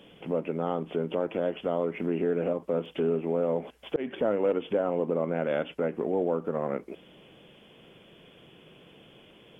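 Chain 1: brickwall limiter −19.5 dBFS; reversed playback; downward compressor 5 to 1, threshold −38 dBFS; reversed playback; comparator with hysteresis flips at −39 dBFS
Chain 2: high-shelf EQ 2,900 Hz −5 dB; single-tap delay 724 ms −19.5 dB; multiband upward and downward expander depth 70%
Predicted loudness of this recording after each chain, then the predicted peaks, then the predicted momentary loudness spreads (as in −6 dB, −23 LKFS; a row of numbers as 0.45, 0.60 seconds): −46.5, −30.0 LKFS; −36.5, −14.0 dBFS; 4, 7 LU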